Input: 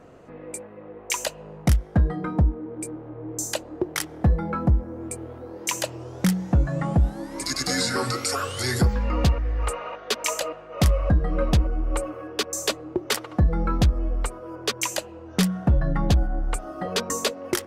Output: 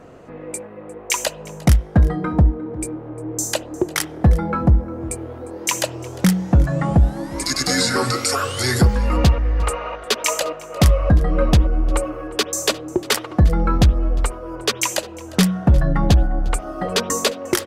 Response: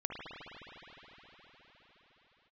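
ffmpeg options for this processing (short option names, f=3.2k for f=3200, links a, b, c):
-filter_complex "[0:a]aecho=1:1:353:0.0841,asplit=2[a][b];[1:a]atrim=start_sample=2205,atrim=end_sample=4410[c];[b][c]afir=irnorm=-1:irlink=0,volume=-14.5dB[d];[a][d]amix=inputs=2:normalize=0,volume=4.5dB"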